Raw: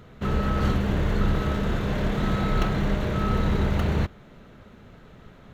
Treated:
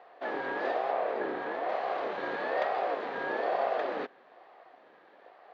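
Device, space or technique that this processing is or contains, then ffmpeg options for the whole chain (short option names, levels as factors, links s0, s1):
voice changer toy: -filter_complex "[0:a]asettb=1/sr,asplit=3[s0][s1][s2];[s0]atrim=end=0.914[s3];[s1]atrim=start=0.91:end=1.69,asetpts=PTS-STARTPTS,afade=t=in:d=0.004:c=qsin,afade=t=out:st=0.776:d=0.004:c=qsin,equalizer=f=6000:w=0.53:g=-6[s4];[s2]atrim=start=1.686[s5];[s3][s4]acrossfade=d=0.004:c1=hsin:c2=qsin[s6];[s6][s5]acrossfade=d=0.004:c1=qsin:c2=hsin,aeval=exprs='val(0)*sin(2*PI*470*n/s+470*0.3/1.1*sin(2*PI*1.1*n/s))':c=same,highpass=430,equalizer=f=730:t=q:w=4:g=7,equalizer=f=1200:t=q:w=4:g=5,equalizer=f=1700:t=q:w=4:g=7,lowpass=f=4800:w=0.5412,lowpass=f=4800:w=1.3066,volume=0.473"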